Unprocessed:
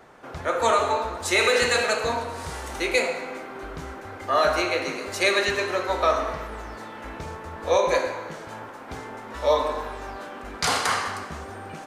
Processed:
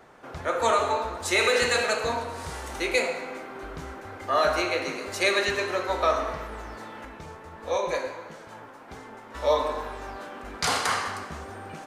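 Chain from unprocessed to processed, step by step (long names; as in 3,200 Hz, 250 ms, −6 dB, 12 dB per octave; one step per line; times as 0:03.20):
0:07.05–0:09.35: flanger 1.5 Hz, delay 3.5 ms, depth 4.3 ms, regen +64%
level −2 dB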